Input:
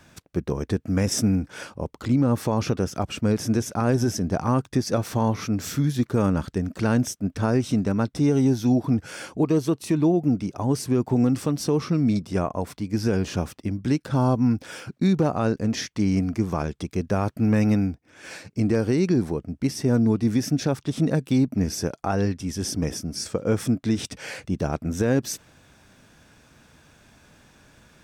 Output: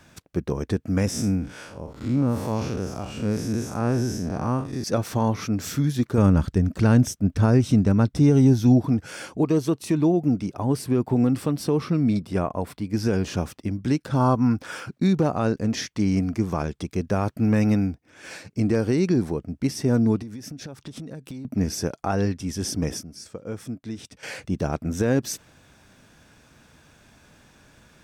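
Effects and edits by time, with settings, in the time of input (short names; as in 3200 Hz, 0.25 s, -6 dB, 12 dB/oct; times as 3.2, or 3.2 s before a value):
1.1–4.84 time blur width 0.131 s
6.18–8.87 low shelf 140 Hz +12 dB
10.5–12.94 bell 6300 Hz -7.5 dB 0.54 oct
14.2–14.86 bell 1200 Hz +8 dB 0.92 oct
20.22–21.45 compressor 12:1, threshold -33 dBFS
23.03–24.23 gain -10.5 dB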